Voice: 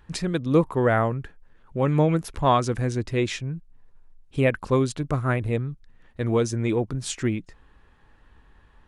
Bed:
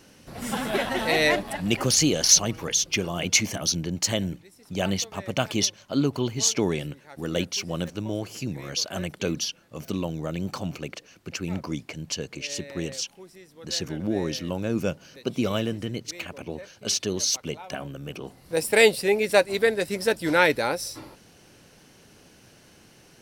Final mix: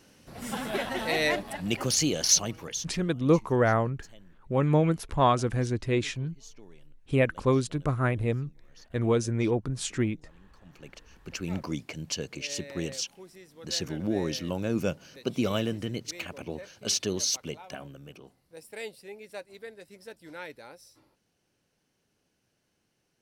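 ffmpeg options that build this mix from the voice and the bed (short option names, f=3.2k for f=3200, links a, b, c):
-filter_complex "[0:a]adelay=2750,volume=-2.5dB[a];[1:a]volume=21.5dB,afade=t=out:st=2.41:d=0.7:silence=0.0668344,afade=t=in:st=10.62:d=0.93:silence=0.0473151,afade=t=out:st=17.07:d=1.43:silence=0.1[b];[a][b]amix=inputs=2:normalize=0"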